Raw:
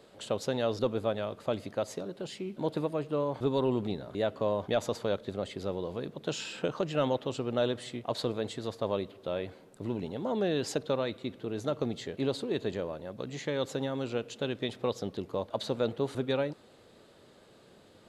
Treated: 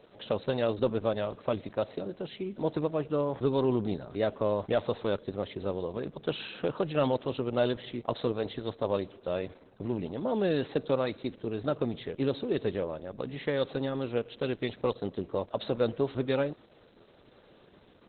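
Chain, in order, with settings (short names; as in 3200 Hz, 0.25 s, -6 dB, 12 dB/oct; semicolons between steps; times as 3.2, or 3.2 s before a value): high shelf 7900 Hz -4.5 dB; gain +2.5 dB; Opus 8 kbps 48000 Hz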